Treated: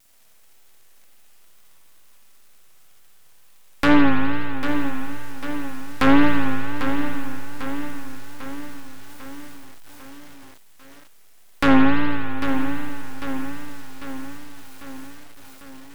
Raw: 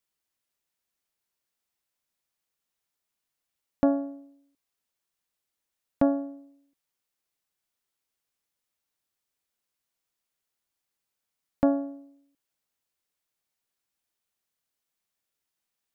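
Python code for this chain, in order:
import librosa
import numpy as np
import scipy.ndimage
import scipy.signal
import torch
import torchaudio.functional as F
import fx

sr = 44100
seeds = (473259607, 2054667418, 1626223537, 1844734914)

p1 = scipy.signal.sosfilt(scipy.signal.butter(2, 56.0, 'highpass', fs=sr, output='sos'), x)
p2 = fx.bass_treble(p1, sr, bass_db=-7, treble_db=13)
p3 = fx.fold_sine(p2, sr, drive_db=9, ceiling_db=-11.5)
p4 = p3 + fx.echo_wet_lowpass(p3, sr, ms=217, feedback_pct=68, hz=650.0, wet_db=-15.0, dry=0)
p5 = fx.dmg_crackle(p4, sr, seeds[0], per_s=340.0, level_db=-52.0)
p6 = np.maximum(p5, 0.0)
p7 = fx.rev_spring(p6, sr, rt60_s=2.8, pass_ms=(54,), chirp_ms=30, drr_db=-2.5)
p8 = fx.wow_flutter(p7, sr, seeds[1], rate_hz=2.1, depth_cents=90.0)
p9 = fx.echo_crushed(p8, sr, ms=797, feedback_pct=55, bits=7, wet_db=-9.0)
y = p9 * librosa.db_to_amplitude(5.0)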